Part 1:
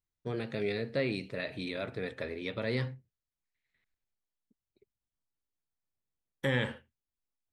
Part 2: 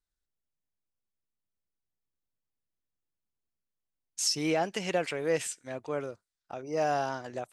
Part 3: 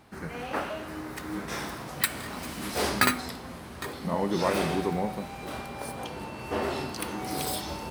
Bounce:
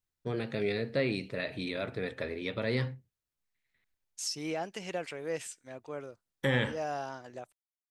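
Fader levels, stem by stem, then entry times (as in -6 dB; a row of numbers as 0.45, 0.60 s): +1.5 dB, -7.0 dB, off; 0.00 s, 0.00 s, off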